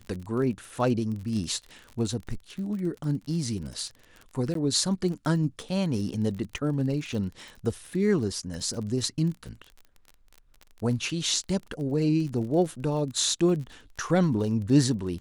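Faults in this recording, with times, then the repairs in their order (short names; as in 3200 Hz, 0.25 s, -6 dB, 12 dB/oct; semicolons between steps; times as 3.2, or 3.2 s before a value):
crackle 36/s -35 dBFS
4.54–4.55 gap 13 ms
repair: de-click; interpolate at 4.54, 13 ms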